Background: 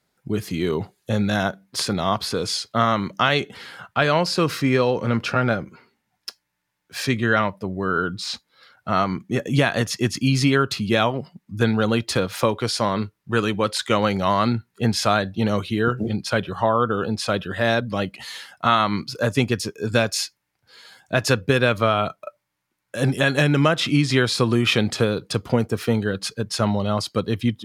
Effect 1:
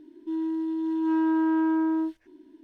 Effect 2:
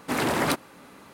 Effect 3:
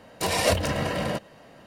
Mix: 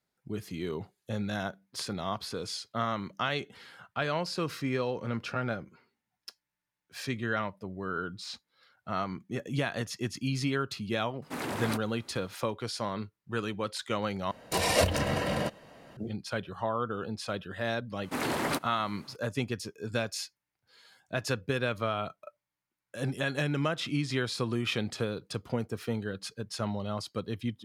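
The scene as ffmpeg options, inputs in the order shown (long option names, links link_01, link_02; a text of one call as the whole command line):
ffmpeg -i bed.wav -i cue0.wav -i cue1.wav -i cue2.wav -filter_complex "[2:a]asplit=2[link_01][link_02];[0:a]volume=-12dB,asplit=2[link_03][link_04];[link_03]atrim=end=14.314[link_05];[3:a]atrim=end=1.66,asetpts=PTS-STARTPTS,volume=-2.5dB[link_06];[link_04]atrim=start=15.966[link_07];[link_01]atrim=end=1.13,asetpts=PTS-STARTPTS,volume=-10dB,afade=type=in:duration=0.004:curve=hsin,afade=type=out:start_time=1.126:duration=0.004:curve=hsin,adelay=494802S[link_08];[link_02]atrim=end=1.13,asetpts=PTS-STARTPTS,volume=-6dB,afade=type=in:duration=0.004:curve=hsin,afade=type=out:start_time=1.126:duration=0.004:curve=hsin,adelay=18030[link_09];[link_05][link_06]acrossfade=duration=0.004:curve1=hsin:curve2=hsin[link_10];[link_10][link_07]acrossfade=duration=0.004:curve1=hsin:curve2=hsin[link_11];[link_11][link_08][link_09]amix=inputs=3:normalize=0" out.wav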